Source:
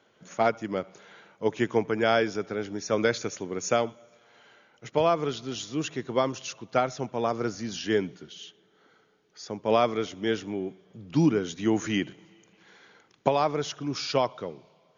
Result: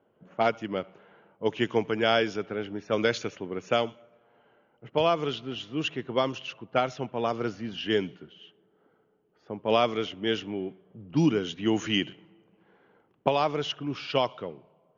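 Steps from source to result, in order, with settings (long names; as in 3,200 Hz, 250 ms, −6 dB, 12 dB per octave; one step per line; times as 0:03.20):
parametric band 2,900 Hz +11 dB 0.34 octaves
low-pass that shuts in the quiet parts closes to 830 Hz, open at −19 dBFS
level −1 dB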